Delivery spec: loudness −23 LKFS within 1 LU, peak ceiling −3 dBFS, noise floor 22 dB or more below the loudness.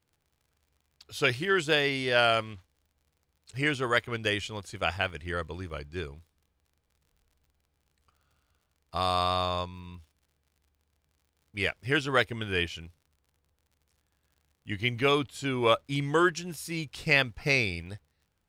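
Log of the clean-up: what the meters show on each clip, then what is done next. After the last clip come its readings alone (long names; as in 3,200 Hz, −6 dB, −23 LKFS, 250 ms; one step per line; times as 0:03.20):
crackle rate 48 per second; integrated loudness −28.0 LKFS; sample peak −7.0 dBFS; target loudness −23.0 LKFS
→ click removal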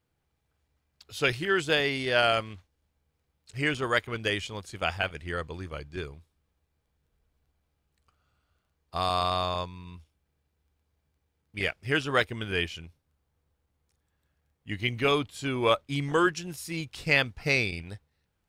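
crackle rate 0.16 per second; integrated loudness −28.0 LKFS; sample peak −7.0 dBFS; target loudness −23.0 LKFS
→ level +5 dB
brickwall limiter −3 dBFS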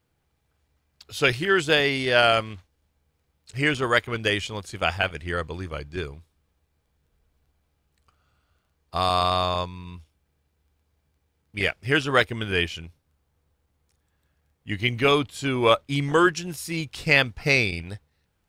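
integrated loudness −23.0 LKFS; sample peak −3.0 dBFS; background noise floor −73 dBFS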